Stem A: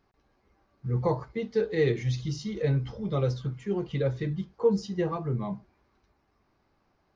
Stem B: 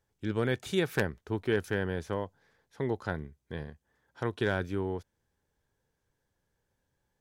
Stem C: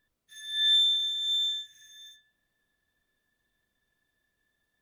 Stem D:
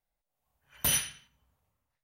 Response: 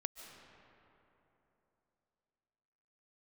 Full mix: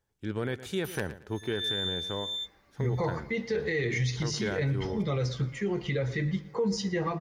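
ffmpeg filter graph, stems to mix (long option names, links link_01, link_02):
-filter_complex "[0:a]equalizer=frequency=2000:width_type=o:width=0.46:gain=10.5,highshelf=frequency=5000:gain=11,adelay=1950,volume=2dB,asplit=3[link_01][link_02][link_03];[link_02]volume=-20dB[link_04];[link_03]volume=-20.5dB[link_05];[1:a]volume=-1.5dB,asplit=3[link_06][link_07][link_08];[link_07]volume=-16.5dB[link_09];[2:a]adelay=1000,volume=-7dB[link_10];[3:a]volume=-19dB[link_11];[link_08]apad=whole_len=256316[link_12];[link_10][link_12]sidechaingate=range=-33dB:threshold=-58dB:ratio=16:detection=peak[link_13];[4:a]atrim=start_sample=2205[link_14];[link_04][link_14]afir=irnorm=-1:irlink=0[link_15];[link_05][link_09]amix=inputs=2:normalize=0,aecho=0:1:114|228|342|456:1|0.25|0.0625|0.0156[link_16];[link_01][link_06][link_13][link_11][link_15][link_16]amix=inputs=6:normalize=0,alimiter=limit=-21dB:level=0:latency=1:release=63"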